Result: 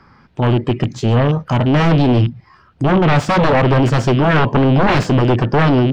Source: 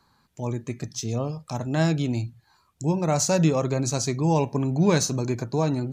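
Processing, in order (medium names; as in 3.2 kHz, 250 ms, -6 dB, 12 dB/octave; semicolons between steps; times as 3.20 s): rattle on loud lows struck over -28 dBFS, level -32 dBFS; sine folder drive 14 dB, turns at -8 dBFS; distance through air 390 m; formant shift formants +3 st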